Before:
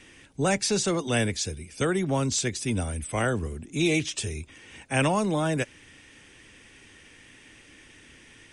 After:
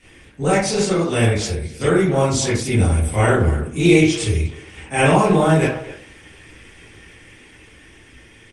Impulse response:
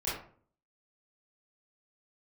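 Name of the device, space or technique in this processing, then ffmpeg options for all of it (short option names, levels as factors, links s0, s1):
speakerphone in a meeting room: -filter_complex "[1:a]atrim=start_sample=2205[s0];[0:a][s0]afir=irnorm=-1:irlink=0,asplit=2[s1][s2];[s2]adelay=250,highpass=300,lowpass=3400,asoftclip=type=hard:threshold=0.2,volume=0.2[s3];[s1][s3]amix=inputs=2:normalize=0,dynaudnorm=f=360:g=11:m=1.88,volume=1.19" -ar 48000 -c:a libopus -b:a 24k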